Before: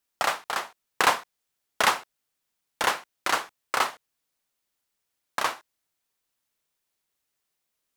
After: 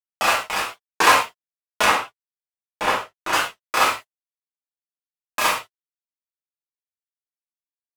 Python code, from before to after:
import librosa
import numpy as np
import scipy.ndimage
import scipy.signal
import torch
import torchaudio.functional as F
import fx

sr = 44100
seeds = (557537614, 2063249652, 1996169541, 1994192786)

y = fx.rattle_buzz(x, sr, strikes_db=-51.0, level_db=-19.0)
y = fx.high_shelf(y, sr, hz=9100.0, db=9.0, at=(3.88, 5.47))
y = np.sign(y) * np.maximum(np.abs(y) - 10.0 ** (-36.5 / 20.0), 0.0)
y = fx.high_shelf(y, sr, hz=2500.0, db=-10.5, at=(1.84, 3.33))
y = fx.rev_gated(y, sr, seeds[0], gate_ms=150, shape='falling', drr_db=-7.5)
y = fx.record_warp(y, sr, rpm=45.0, depth_cents=160.0)